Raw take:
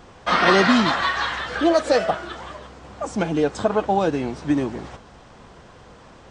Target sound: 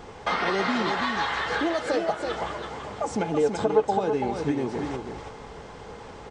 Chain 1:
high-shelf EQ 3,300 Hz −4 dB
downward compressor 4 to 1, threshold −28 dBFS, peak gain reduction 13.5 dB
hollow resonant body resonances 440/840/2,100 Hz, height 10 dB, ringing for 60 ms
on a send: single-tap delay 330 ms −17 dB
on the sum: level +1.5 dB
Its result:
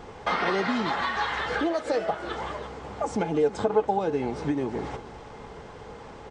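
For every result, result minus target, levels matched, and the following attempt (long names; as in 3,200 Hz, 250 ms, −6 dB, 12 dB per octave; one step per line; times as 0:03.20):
echo-to-direct −11.5 dB; 8,000 Hz band −3.0 dB
high-shelf EQ 3,300 Hz −4 dB
downward compressor 4 to 1, threshold −28 dBFS, peak gain reduction 13.5 dB
hollow resonant body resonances 440/840/2,100 Hz, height 10 dB, ringing for 60 ms
on a send: single-tap delay 330 ms −5.5 dB
on the sum: level +1.5 dB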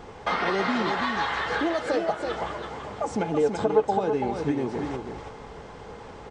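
8,000 Hz band −3.0 dB
downward compressor 4 to 1, threshold −28 dBFS, peak gain reduction 14 dB
hollow resonant body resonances 440/840/2,100 Hz, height 10 dB, ringing for 60 ms
on a send: single-tap delay 330 ms −5.5 dB
on the sum: level +1.5 dB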